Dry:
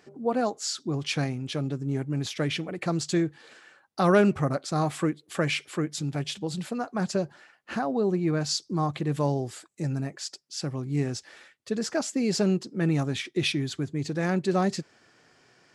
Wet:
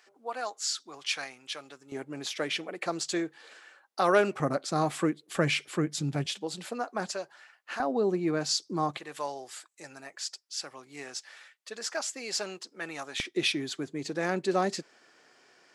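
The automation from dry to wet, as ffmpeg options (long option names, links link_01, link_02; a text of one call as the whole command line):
ffmpeg -i in.wav -af "asetnsamples=nb_out_samples=441:pad=0,asendcmd='1.92 highpass f 430;4.4 highpass f 200;5.36 highpass f 100;6.26 highpass f 370;7.13 highpass f 770;7.8 highpass f 260;8.97 highpass f 830;13.2 highpass f 310',highpass=1000" out.wav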